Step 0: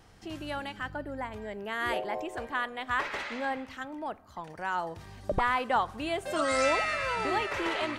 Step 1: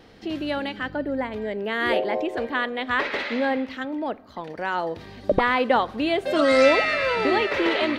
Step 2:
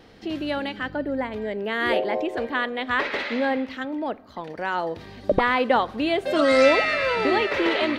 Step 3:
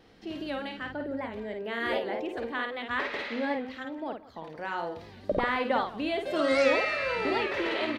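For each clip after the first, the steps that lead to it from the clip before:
ten-band EQ 250 Hz +11 dB, 500 Hz +10 dB, 2000 Hz +6 dB, 4000 Hz +10 dB, 8000 Hz -7 dB
nothing audible
on a send: tapped delay 52/175 ms -5.5/-18.5 dB; on the sum: record warp 78 rpm, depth 100 cents; gain -8 dB

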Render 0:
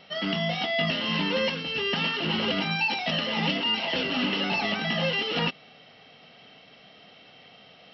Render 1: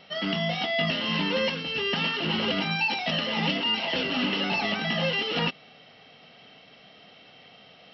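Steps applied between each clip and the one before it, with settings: nothing audible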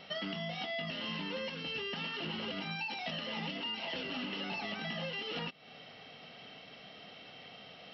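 compressor 10:1, threshold -36 dBFS, peak gain reduction 14.5 dB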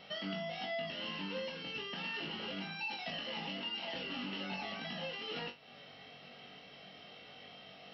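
flutter echo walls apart 3.6 m, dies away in 0.25 s; gain -3.5 dB

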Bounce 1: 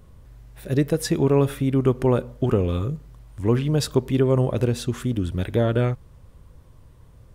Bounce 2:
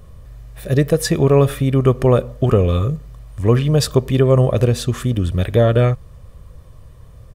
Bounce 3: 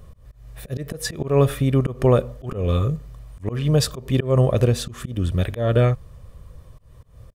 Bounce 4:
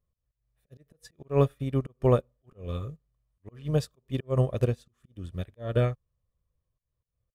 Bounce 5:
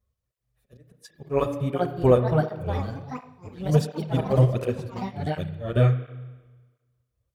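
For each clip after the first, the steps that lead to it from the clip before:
comb 1.7 ms, depth 40%; gain +6 dB
auto swell 0.18 s; gain -2.5 dB
upward expander 2.5:1, over -34 dBFS; gain -4 dB
spring tank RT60 1.3 s, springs 32 ms, chirp 75 ms, DRR 8.5 dB; echoes that change speed 0.696 s, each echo +4 st, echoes 3, each echo -6 dB; tape flanging out of phase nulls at 1.4 Hz, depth 7.6 ms; gain +6 dB

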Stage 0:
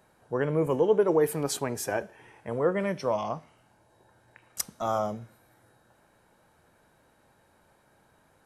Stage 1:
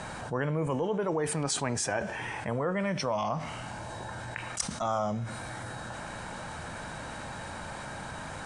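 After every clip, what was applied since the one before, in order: steep low-pass 9500 Hz 72 dB/oct; bell 400 Hz -8.5 dB 0.89 oct; fast leveller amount 70%; gain -3 dB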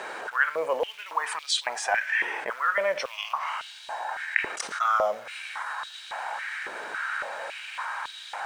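companded quantiser 6-bit; bell 1900 Hz +13 dB 2.8 oct; stepped high-pass 3.6 Hz 400–3600 Hz; gain -7 dB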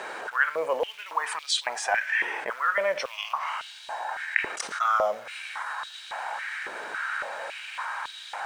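nothing audible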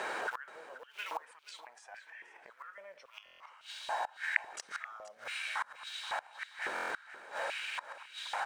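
flipped gate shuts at -23 dBFS, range -25 dB; feedback echo 0.478 s, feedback 25%, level -15 dB; stuck buffer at 3.24/6.74, samples 1024, times 6; gain -1 dB

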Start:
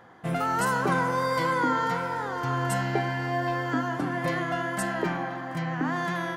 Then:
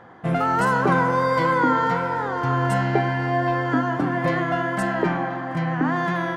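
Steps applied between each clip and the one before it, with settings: LPF 2200 Hz 6 dB/oct; gain +6.5 dB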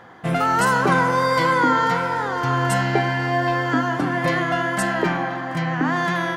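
high shelf 2400 Hz +11 dB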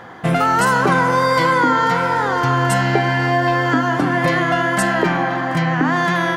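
compressor 2:1, threshold -23 dBFS, peak gain reduction 5.5 dB; gain +7.5 dB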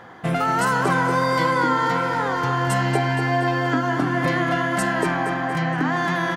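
feedback echo 0.235 s, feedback 47%, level -9 dB; gain -5.5 dB

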